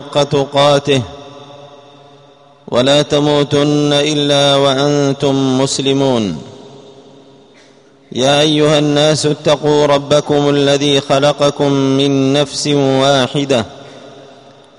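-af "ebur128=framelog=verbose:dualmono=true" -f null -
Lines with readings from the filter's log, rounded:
Integrated loudness:
  I:          -9.2 LUFS
  Threshold: -20.5 LUFS
Loudness range:
  LRA:         3.6 LU
  Threshold: -30.2 LUFS
  LRA low:   -12.4 LUFS
  LRA high:   -8.7 LUFS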